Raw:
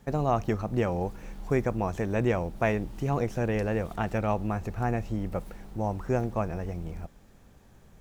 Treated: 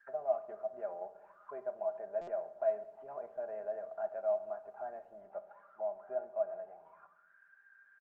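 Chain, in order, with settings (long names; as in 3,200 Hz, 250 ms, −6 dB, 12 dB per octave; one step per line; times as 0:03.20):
mid-hump overdrive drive 14 dB, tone 2,900 Hz, clips at −12 dBFS
envelope filter 650–1,700 Hz, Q 17, down, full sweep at −27.5 dBFS
parametric band 1,500 Hz +12 dB 0.38 octaves
comb filter 5 ms, depth 63%
multiband delay without the direct sound lows, highs 180 ms, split 4,300 Hz
on a send at −10 dB: convolution reverb RT60 0.95 s, pre-delay 3 ms
on the sum: buffer that repeats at 0:02.21, samples 256, times 10
level −3.5 dB
Opus 24 kbit/s 48,000 Hz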